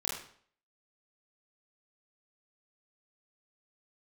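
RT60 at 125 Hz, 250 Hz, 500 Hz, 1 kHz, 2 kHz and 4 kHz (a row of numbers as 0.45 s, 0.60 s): 0.55 s, 0.55 s, 0.55 s, 0.55 s, 0.50 s, 0.50 s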